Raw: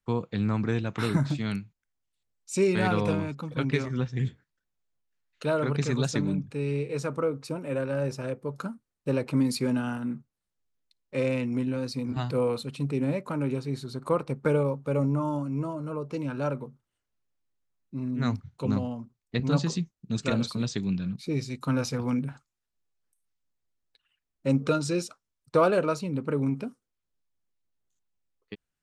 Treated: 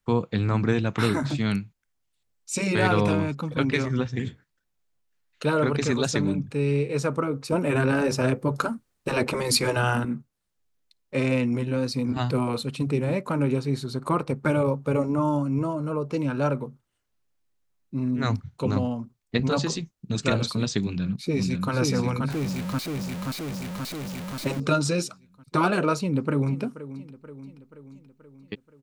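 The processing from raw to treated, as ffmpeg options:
-filter_complex "[0:a]asettb=1/sr,asplit=3[a][b][c];[a]atrim=end=7.524[d];[b]atrim=start=7.52:end=10.05,asetpts=PTS-STARTPTS,afade=t=in:d=0.004:c=qsin,afade=t=out:st=2.526:d=0.004:c=qsin,acontrast=74[e];[c]atrim=start=10.046[f];[d][e]acrossfade=d=0.004:c1=hsin:c2=qsin[g];[g][f]acrossfade=d=0.004:c1=qsin:c2=hsin,asplit=2[h][i];[i]afade=t=in:st=20.83:d=0.01,afade=t=out:st=21.72:d=0.01,aecho=0:1:530|1060|1590|2120|2650|3180|3710|4240|4770:0.630957|0.378574|0.227145|0.136287|0.0817721|0.0490632|0.0294379|0.0176628|0.0105977[j];[h][j]amix=inputs=2:normalize=0,asettb=1/sr,asplit=3[k][l][m];[k]atrim=end=22.304[n];[l]atrim=start=22.3:end=24.6,asetpts=PTS-STARTPTS,afade=t=in:d=0.004:c=qsin,afade=t=out:st=2.296:d=0.004:c=qsin,aeval=exprs='val(0)+0.5*0.0178*sgn(val(0))':c=same[o];[m]atrim=start=24.596[p];[n][o]acrossfade=d=0.004:c1=hsin:c2=qsin[q];[q][p]acrossfade=d=0.004:c1=qsin:c2=hsin,asplit=2[r][s];[s]afade=t=in:st=25.99:d=0.01,afade=t=out:st=26.62:d=0.01,aecho=0:1:480|960|1440|1920|2400|2880:0.149624|0.0897741|0.0538645|0.0323187|0.0193912|0.0116347[t];[r][t]amix=inputs=2:normalize=0,afftfilt=real='re*lt(hypot(re,im),0.447)':imag='im*lt(hypot(re,im),0.447)':win_size=1024:overlap=0.75,volume=5.5dB"

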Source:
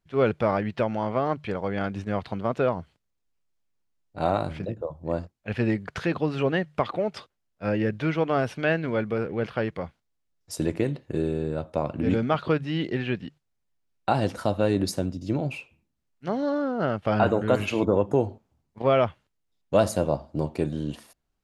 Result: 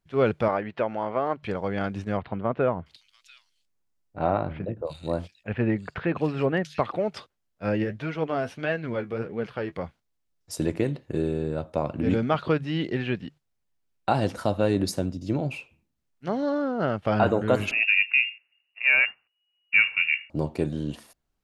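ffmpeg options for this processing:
-filter_complex "[0:a]asettb=1/sr,asplit=3[a][b][c];[a]atrim=end=0.484[d];[b]atrim=start=0.48:end=1.43,asetpts=PTS-STARTPTS,afade=t=in:d=0.004:c=qsin,afade=t=out:st=0.946:d=0.004:c=qsin,bass=f=250:g=-10,treble=f=4k:g=-13[e];[c]atrim=start=1.426[f];[d][e]acrossfade=d=0.004:c1=hsin:c2=qsin[g];[g][f]acrossfade=d=0.004:c1=qsin:c2=hsin,asettb=1/sr,asplit=3[h][i][j];[h]atrim=end=2.174[k];[i]atrim=start=2.17:end=6.92,asetpts=PTS-STARTPTS,afade=t=in:d=0.004:c=qsin,afade=t=out:st=4.746:d=0.004:c=qsin,acrossover=split=3100[l][m];[m]adelay=690[n];[l][n]amix=inputs=2:normalize=0,atrim=end_sample=209475[o];[j]atrim=start=6.916[p];[k][o]acrossfade=d=0.004:c1=hsin:c2=qsin[q];[q][p]acrossfade=d=0.004:c1=qsin:c2=hsin,asplit=3[r][s][t];[r]afade=t=out:st=7.83:d=0.02[u];[s]flanger=delay=4.2:depth=8:regen=48:speed=1.6:shape=sinusoidal,afade=t=in:st=7.83:d=0.02,afade=t=out:st=9.71:d=0.02[v];[t]afade=t=in:st=9.71:d=0.02[w];[u][v][w]amix=inputs=3:normalize=0,asettb=1/sr,asplit=3[x][y][z];[x]atrim=end=17.714[aa];[y]atrim=start=17.71:end=20.3,asetpts=PTS-STARTPTS,afade=t=in:d=0.004:c=qsin,afade=t=out:st=2.586:d=0.004:c=qsin,lowpass=f=2.5k:t=q:w=0.5098,lowpass=f=2.5k:t=q:w=0.6013,lowpass=f=2.5k:t=q:w=0.9,lowpass=f=2.5k:t=q:w=2.563,afreqshift=-2900[ab];[z]atrim=start=20.296[ac];[aa][ab]acrossfade=d=0.004:c1=hsin:c2=qsin[ad];[ad][ac]acrossfade=d=0.004:c1=qsin:c2=hsin"

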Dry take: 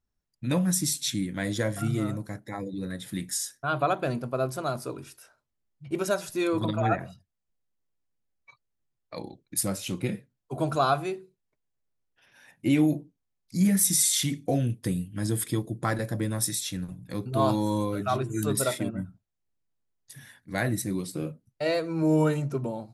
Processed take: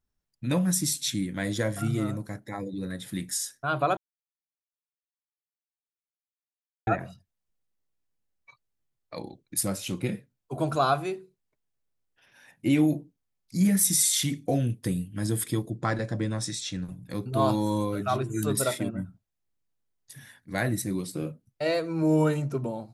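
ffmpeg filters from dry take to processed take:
-filter_complex "[0:a]asettb=1/sr,asplit=3[a][b][c];[a]atrim=end=15.704[d];[b]atrim=start=15.7:end=16.85,asetpts=PTS-STARTPTS,afade=t=in:d=0.004:c=qsin,afade=t=out:st=1.146:d=0.004:c=qsin,lowpass=f=7.3k:w=0.5412,lowpass=f=7.3k:w=1.3066[e];[c]atrim=start=16.846[f];[d][e]acrossfade=d=0.004:c1=hsin:c2=qsin[g];[g][f]acrossfade=d=0.004:c1=qsin:c2=hsin,asplit=3[h][i][j];[h]atrim=end=3.97,asetpts=PTS-STARTPTS,afade=t=out:st=3.966:d=0.004:c=hsin[k];[i]atrim=start=3.97:end=6.87,asetpts=PTS-STARTPTS,volume=0[l];[j]atrim=start=6.87,asetpts=PTS-STARTPTS,afade=t=in:d=0.004:c=hsin[m];[k][l][m]concat=n=3:v=0:a=1"

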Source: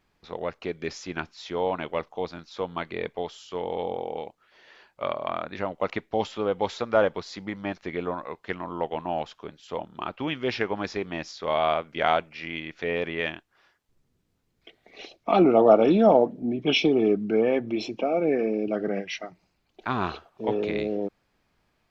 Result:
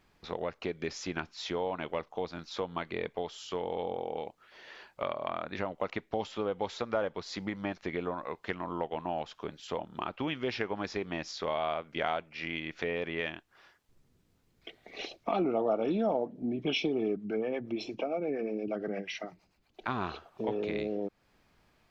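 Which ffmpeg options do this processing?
-filter_complex "[0:a]asettb=1/sr,asplit=3[a][b][c];[a]atrim=end=17.164[d];[b]atrim=start=17.16:end=19.88,asetpts=PTS-STARTPTS,afade=t=in:d=0.004:c=qsin,afade=t=out:st=2.716:d=0.004:c=qsin,acrossover=split=430[e][f];[e]aeval=exprs='val(0)*(1-0.7/2+0.7/2*cos(2*PI*8.6*n/s))':c=same[g];[f]aeval=exprs='val(0)*(1-0.7/2-0.7/2*cos(2*PI*8.6*n/s))':c=same[h];[g][h]amix=inputs=2:normalize=0[i];[c]atrim=start=19.876[j];[d][i]acrossfade=d=0.004:c1=hsin:c2=qsin[k];[k][j]acrossfade=d=0.004:c1=qsin:c2=hsin,acompressor=threshold=-37dB:ratio=2.5,volume=3dB"

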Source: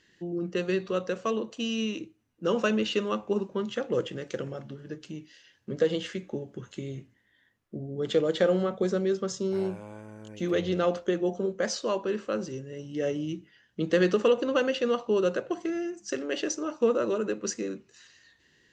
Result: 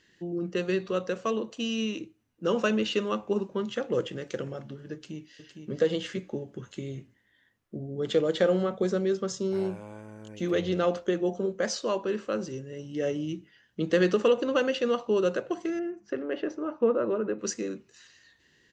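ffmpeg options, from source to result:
-filter_complex "[0:a]asplit=2[a][b];[b]afade=t=in:st=4.93:d=0.01,afade=t=out:st=5.73:d=0.01,aecho=0:1:460|920|1380:0.473151|0.0709727|0.0106459[c];[a][c]amix=inputs=2:normalize=0,asettb=1/sr,asplit=3[d][e][f];[d]atrim=end=15.794[g];[e]atrim=start=15.79:end=17.39,asetpts=PTS-STARTPTS,afade=t=in:d=0.004:c=qsin,afade=t=out:st=1.596:d=0.004:c=qsin,lowpass=1.7k[h];[f]atrim=start=17.386[i];[g][h]acrossfade=d=0.004:c1=hsin:c2=qsin[j];[j][i]acrossfade=d=0.004:c1=qsin:c2=hsin"

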